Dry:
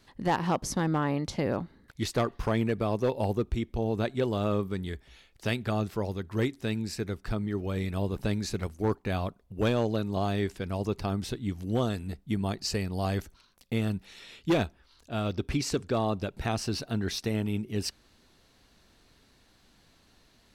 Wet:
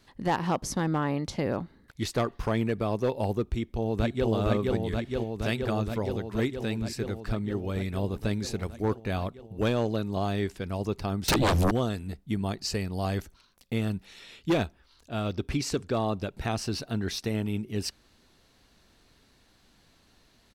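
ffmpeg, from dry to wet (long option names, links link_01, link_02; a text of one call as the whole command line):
ffmpeg -i in.wav -filter_complex "[0:a]asplit=2[link_01][link_02];[link_02]afade=type=in:start_time=3.5:duration=0.01,afade=type=out:start_time=4.29:duration=0.01,aecho=0:1:470|940|1410|1880|2350|2820|3290|3760|4230|4700|5170|5640:0.841395|0.673116|0.538493|0.430794|0.344635|0.275708|0.220567|0.176453|0.141163|0.11293|0.0903441|0.0722753[link_03];[link_01][link_03]amix=inputs=2:normalize=0,asettb=1/sr,asplit=3[link_04][link_05][link_06];[link_04]atrim=end=11.284[link_07];[link_05]atrim=start=11.28:end=11.71,asetpts=PTS-STARTPTS,afade=type=in:duration=0.004:curve=qsin,afade=type=out:start_time=0.426:duration=0.004:curve=qsin,aeval=exprs='0.106*sin(PI/2*7.94*val(0)/0.106)':channel_layout=same[link_08];[link_06]atrim=start=11.706[link_09];[link_07][link_08]acrossfade=duration=0.004:curve1=hsin:curve2=qsin[link_10];[link_10][link_09]acrossfade=duration=0.004:curve1=qsin:curve2=hsin" out.wav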